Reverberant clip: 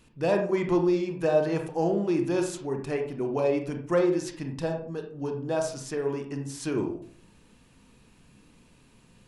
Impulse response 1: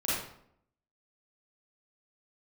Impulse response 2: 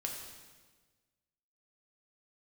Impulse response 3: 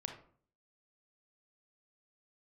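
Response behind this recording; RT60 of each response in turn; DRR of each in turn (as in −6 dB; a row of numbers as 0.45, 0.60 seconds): 3; 0.70, 1.4, 0.50 seconds; −9.5, 0.0, 3.5 decibels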